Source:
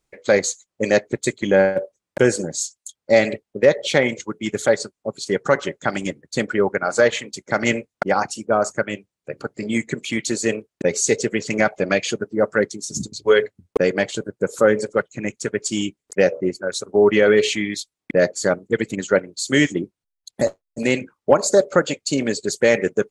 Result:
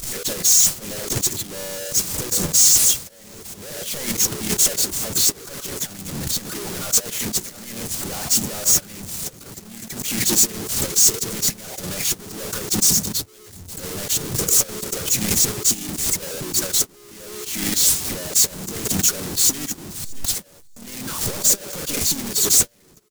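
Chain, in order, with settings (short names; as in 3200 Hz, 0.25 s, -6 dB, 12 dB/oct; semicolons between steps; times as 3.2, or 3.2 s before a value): infinite clipping; low shelf 75 Hz -2.5 dB; feedback echo 0.632 s, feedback 47%, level -16.5 dB; harmoniser -3 st -6 dB; tone controls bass +9 dB, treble +14 dB; gate -7 dBFS, range -51 dB; backwards sustainer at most 37 dB/s; gain -2.5 dB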